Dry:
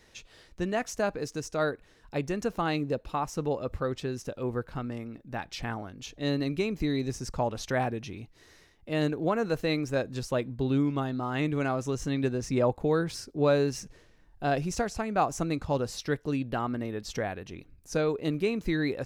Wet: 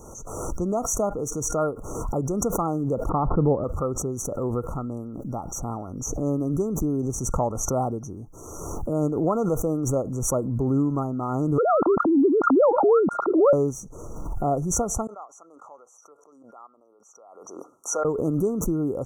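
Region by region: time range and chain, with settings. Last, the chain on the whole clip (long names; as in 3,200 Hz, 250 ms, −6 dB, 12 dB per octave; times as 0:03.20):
0:03.09–0:03.64: elliptic low-pass filter 1,600 Hz, stop band 80 dB + low-shelf EQ 410 Hz +9.5 dB
0:11.58–0:13.53: three sine waves on the formant tracks + envelope flattener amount 70%
0:15.07–0:18.05: band-pass filter 440–2,100 Hz + first difference
whole clip: brick-wall band-stop 1,400–5,700 Hz; background raised ahead of every attack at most 35 dB per second; level +3.5 dB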